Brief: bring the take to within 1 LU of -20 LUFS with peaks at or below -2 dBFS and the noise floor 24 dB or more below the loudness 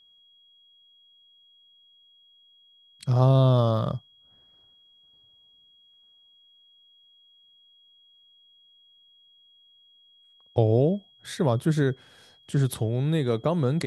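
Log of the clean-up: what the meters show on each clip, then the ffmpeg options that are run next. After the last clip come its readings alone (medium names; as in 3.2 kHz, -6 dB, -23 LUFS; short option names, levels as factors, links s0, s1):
steady tone 3.3 kHz; tone level -56 dBFS; loudness -24.5 LUFS; peak level -7.0 dBFS; loudness target -20.0 LUFS
-> -af "bandreject=f=3300:w=30"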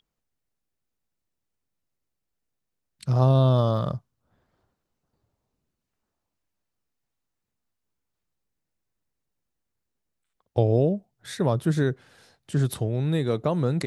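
steady tone not found; loudness -24.0 LUFS; peak level -7.5 dBFS; loudness target -20.0 LUFS
-> -af "volume=1.58"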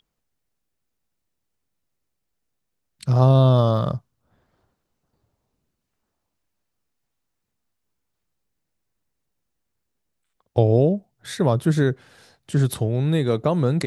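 loudness -20.0 LUFS; peak level -3.5 dBFS; noise floor -78 dBFS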